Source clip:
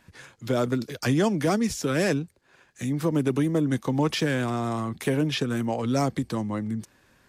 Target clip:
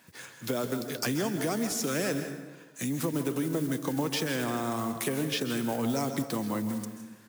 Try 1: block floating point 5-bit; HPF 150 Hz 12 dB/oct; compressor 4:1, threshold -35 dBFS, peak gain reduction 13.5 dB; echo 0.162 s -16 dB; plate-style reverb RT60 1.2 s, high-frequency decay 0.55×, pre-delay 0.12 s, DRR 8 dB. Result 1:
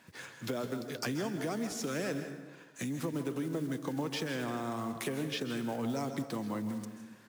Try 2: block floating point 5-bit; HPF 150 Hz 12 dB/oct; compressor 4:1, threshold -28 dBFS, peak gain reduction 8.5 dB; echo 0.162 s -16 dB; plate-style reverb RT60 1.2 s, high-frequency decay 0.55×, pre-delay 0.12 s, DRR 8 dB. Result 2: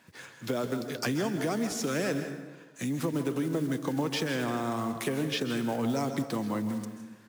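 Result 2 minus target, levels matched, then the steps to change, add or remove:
8000 Hz band -4.0 dB
add after HPF: high shelf 7700 Hz +11 dB

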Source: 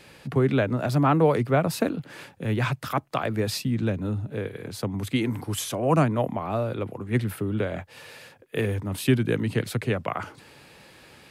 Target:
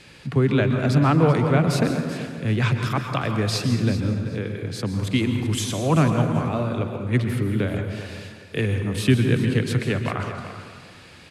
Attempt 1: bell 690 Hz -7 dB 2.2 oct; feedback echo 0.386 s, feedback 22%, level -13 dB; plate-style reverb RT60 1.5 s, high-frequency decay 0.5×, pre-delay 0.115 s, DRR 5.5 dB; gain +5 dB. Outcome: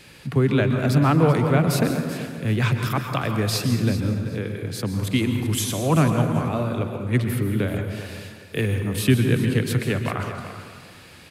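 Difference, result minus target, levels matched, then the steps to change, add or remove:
8000 Hz band +3.0 dB
add first: LPF 8000 Hz 12 dB/oct

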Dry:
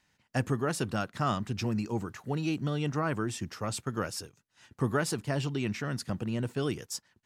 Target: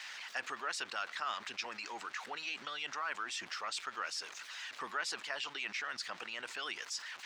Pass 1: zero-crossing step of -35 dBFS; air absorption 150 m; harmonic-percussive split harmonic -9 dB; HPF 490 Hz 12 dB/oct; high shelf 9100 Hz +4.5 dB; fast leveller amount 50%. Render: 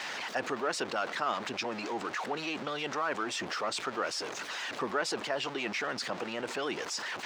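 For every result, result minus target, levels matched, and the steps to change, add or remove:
500 Hz band +10.0 dB; zero-crossing step: distortion +8 dB
change: HPF 1500 Hz 12 dB/oct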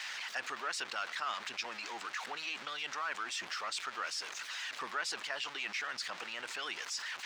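zero-crossing step: distortion +8 dB
change: zero-crossing step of -44.5 dBFS

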